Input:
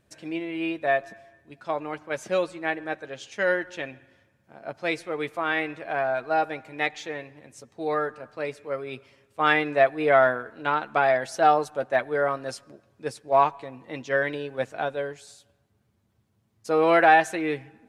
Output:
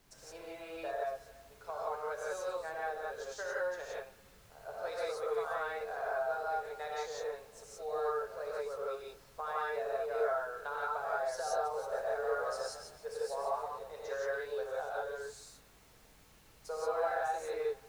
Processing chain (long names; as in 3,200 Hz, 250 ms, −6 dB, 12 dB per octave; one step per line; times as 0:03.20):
elliptic high-pass filter 420 Hz, stop band 40 dB
flat-topped bell 2,500 Hz −14 dB 1 octave
downward compressor 5 to 1, threshold −30 dBFS, peak gain reduction 14.5 dB
background noise pink −59 dBFS
0:11.50–0:13.61: echo with shifted repeats 148 ms, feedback 32%, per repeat +42 Hz, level −7 dB
reverb whose tail is shaped and stops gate 200 ms rising, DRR −6 dB
level −9 dB